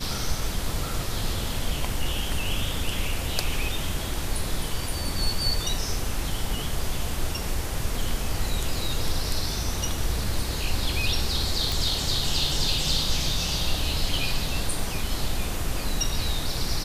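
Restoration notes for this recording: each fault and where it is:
11.72 s: pop

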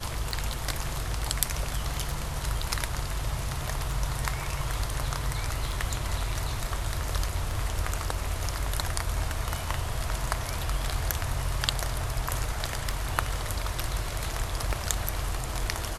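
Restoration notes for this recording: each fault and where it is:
tick 33 1/3 rpm

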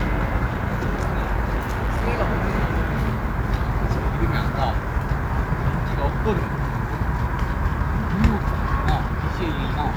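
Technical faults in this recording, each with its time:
1.60–2.08 s: clipped -19 dBFS

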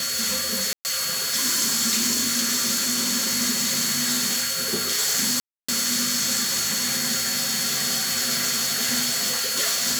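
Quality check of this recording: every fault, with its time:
whine 4.4 kHz -28 dBFS
0.73–0.85 s: dropout 119 ms
5.40–5.68 s: dropout 285 ms

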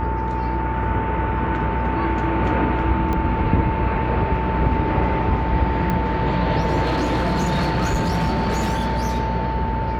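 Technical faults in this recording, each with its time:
buzz 60 Hz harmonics 32 -25 dBFS
whine 890 Hz -25 dBFS
3.13 s: pop -13 dBFS
5.90 s: pop -11 dBFS
6.82–9.06 s: clipped -16 dBFS

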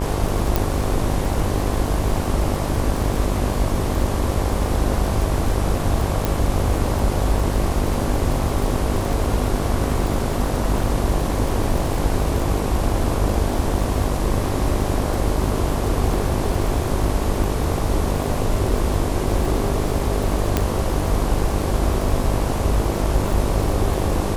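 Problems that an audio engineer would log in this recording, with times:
buzz 50 Hz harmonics 23 -25 dBFS
crackle 50 per s -24 dBFS
0.56 s: pop
6.25 s: pop
20.57 s: pop -4 dBFS

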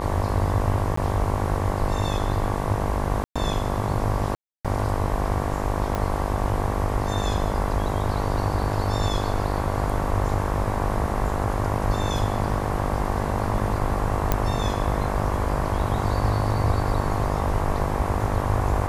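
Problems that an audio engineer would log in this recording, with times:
buzz 50 Hz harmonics 23 -28 dBFS
0.96–0.97 s: dropout
3.24–3.36 s: dropout 116 ms
4.35–4.65 s: dropout 296 ms
5.95 s: pop -13 dBFS
14.32 s: pop -6 dBFS

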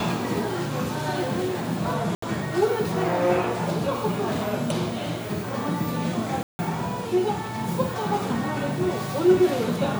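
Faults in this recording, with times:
2.15–2.22 s: dropout 74 ms
6.43–6.59 s: dropout 160 ms

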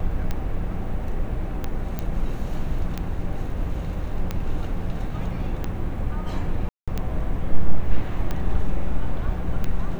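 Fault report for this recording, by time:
tick 45 rpm -13 dBFS
1.99 s: pop -14 dBFS
6.69–6.88 s: dropout 186 ms

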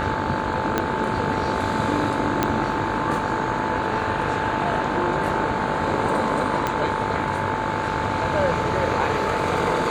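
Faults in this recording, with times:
buzz 50 Hz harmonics 33 -29 dBFS
whine 880 Hz -27 dBFS
0.78 s: pop -7 dBFS
2.43 s: pop -5 dBFS
6.67 s: pop -8 dBFS

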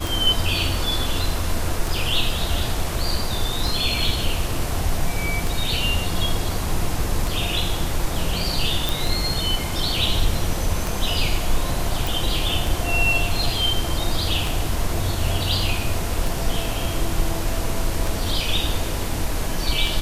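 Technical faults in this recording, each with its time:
tick 33 1/3 rpm
8.89 s: pop
12.07 s: pop

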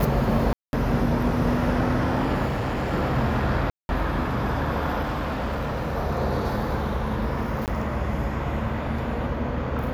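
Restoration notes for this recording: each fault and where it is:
0.53–0.73 s: dropout 201 ms
2.47–2.93 s: clipped -22.5 dBFS
3.70–3.89 s: dropout 191 ms
5.02–5.97 s: clipped -23.5 dBFS
7.66–7.68 s: dropout 18 ms

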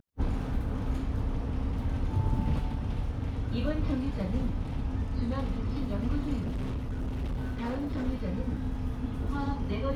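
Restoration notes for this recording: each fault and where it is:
6.40–8.08 s: clipped -29 dBFS

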